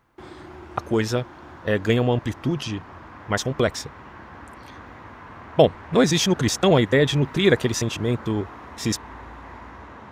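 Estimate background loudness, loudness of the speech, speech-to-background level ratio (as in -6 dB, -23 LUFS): -41.5 LUFS, -22.0 LUFS, 19.5 dB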